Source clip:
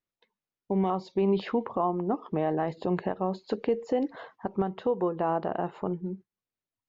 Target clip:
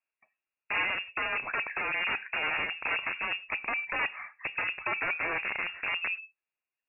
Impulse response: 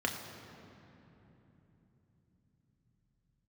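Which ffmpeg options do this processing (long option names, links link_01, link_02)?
-filter_complex "[0:a]aeval=exprs='(mod(18.8*val(0)+1,2)-1)/18.8':channel_layout=same,asplit=2[link_01][link_02];[1:a]atrim=start_sample=2205,afade=type=out:start_time=0.16:duration=0.01,atrim=end_sample=7497,lowshelf=frequency=410:gain=8[link_03];[link_02][link_03]afir=irnorm=-1:irlink=0,volume=-17dB[link_04];[link_01][link_04]amix=inputs=2:normalize=0,lowpass=frequency=2400:width_type=q:width=0.5098,lowpass=frequency=2400:width_type=q:width=0.6013,lowpass=frequency=2400:width_type=q:width=0.9,lowpass=frequency=2400:width_type=q:width=2.563,afreqshift=-2800"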